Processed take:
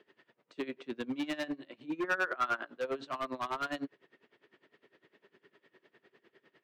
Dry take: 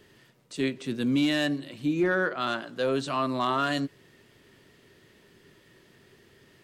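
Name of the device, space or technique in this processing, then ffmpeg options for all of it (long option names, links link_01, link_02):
helicopter radio: -filter_complex "[0:a]highpass=320,lowpass=2600,aeval=exprs='val(0)*pow(10,-21*(0.5-0.5*cos(2*PI*9.9*n/s))/20)':channel_layout=same,asoftclip=type=hard:threshold=-30dB,asettb=1/sr,asplit=3[link_01][link_02][link_03];[link_01]atrim=end=1.804[link_04];[link_02]atrim=start=1.8:end=2.67,asetpts=PTS-STARTPTS,afade=type=in:duration=0.004:curve=qsin,afade=type=out:start_time=0.866:duration=0.004:curve=qsin,adynamicequalizer=threshold=0.00355:dfrequency=1400:dqfactor=1.3:tfrequency=1400:tqfactor=1.3:attack=5:release=100:ratio=0.375:range=3.5:mode=boostabove:tftype=bell[link_05];[link_03]atrim=start=2.666[link_06];[link_04][link_05]acrossfade=duration=0.004:curve1=hsin:curve2=qsin[link_07];[link_07][link_06]acrossfade=duration=0.004:curve1=qsin:curve2=hsin"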